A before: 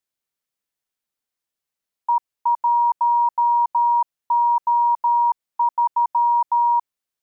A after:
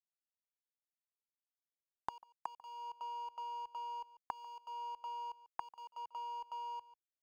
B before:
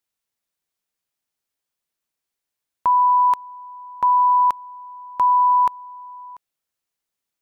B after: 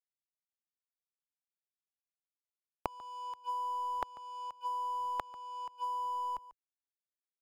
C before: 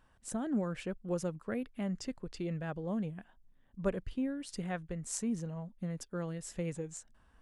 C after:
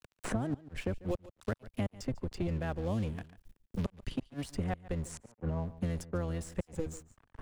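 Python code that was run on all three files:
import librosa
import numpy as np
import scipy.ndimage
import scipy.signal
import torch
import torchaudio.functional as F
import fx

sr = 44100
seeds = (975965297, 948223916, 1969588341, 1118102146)

y = fx.octave_divider(x, sr, octaves=1, level_db=0.0)
y = fx.low_shelf(y, sr, hz=71.0, db=6.0)
y = fx.gate_flip(y, sr, shuts_db=-23.0, range_db=-29)
y = np.sign(y) * np.maximum(np.abs(y) - 10.0 ** (-53.5 / 20.0), 0.0)
y = fx.dynamic_eq(y, sr, hz=700.0, q=0.85, threshold_db=-50.0, ratio=4.0, max_db=4)
y = y + 10.0 ** (-20.5 / 20.0) * np.pad(y, (int(143 * sr / 1000.0), 0))[:len(y)]
y = fx.band_squash(y, sr, depth_pct=100)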